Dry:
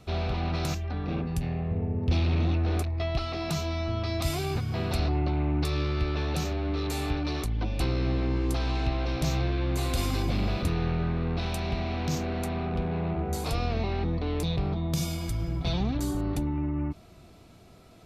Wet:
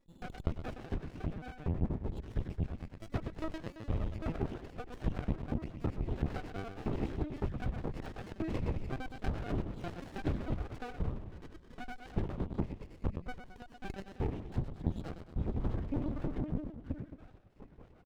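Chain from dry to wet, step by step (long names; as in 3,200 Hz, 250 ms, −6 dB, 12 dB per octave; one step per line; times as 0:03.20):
time-frequency cells dropped at random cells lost 84%
low-pass filter 1,300 Hz 6 dB per octave
mains-hum notches 60/120/180/240/300/360 Hz
0:07.74–0:08.63: tilt shelving filter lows −7.5 dB, about 750 Hz
downward compressor 5 to 1, threshold −38 dBFS, peak gain reduction 13.5 dB
repeating echo 111 ms, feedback 58%, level −8.5 dB
linear-prediction vocoder at 8 kHz pitch kept
windowed peak hold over 33 samples
level +7.5 dB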